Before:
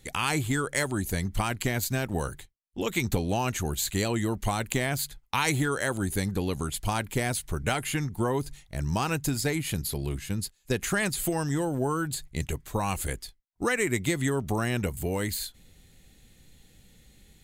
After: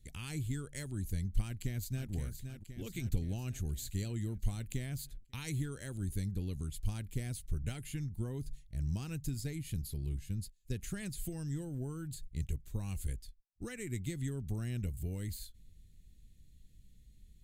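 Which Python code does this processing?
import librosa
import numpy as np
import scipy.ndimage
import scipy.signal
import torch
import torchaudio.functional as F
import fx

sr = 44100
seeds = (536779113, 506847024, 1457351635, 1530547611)

y = fx.echo_throw(x, sr, start_s=1.45, length_s=0.66, ms=520, feedback_pct=60, wet_db=-7.5)
y = fx.tone_stack(y, sr, knobs='10-0-1')
y = F.gain(torch.from_numpy(y), 6.0).numpy()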